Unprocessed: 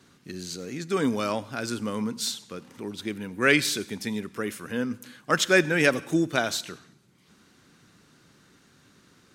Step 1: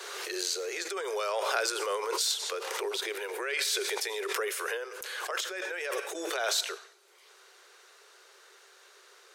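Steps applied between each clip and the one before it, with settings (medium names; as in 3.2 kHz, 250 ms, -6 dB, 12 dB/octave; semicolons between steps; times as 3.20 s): compressor with a negative ratio -31 dBFS, ratio -1; steep high-pass 380 Hz 96 dB/octave; swell ahead of each attack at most 25 dB/s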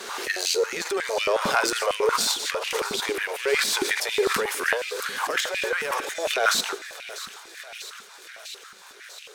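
partial rectifier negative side -7 dB; thinning echo 646 ms, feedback 76%, high-pass 1 kHz, level -13 dB; step-sequenced high-pass 11 Hz 210–2600 Hz; trim +7 dB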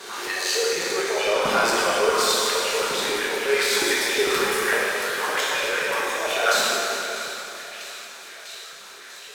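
plate-style reverb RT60 3 s, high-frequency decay 0.85×, DRR -5.5 dB; trim -3.5 dB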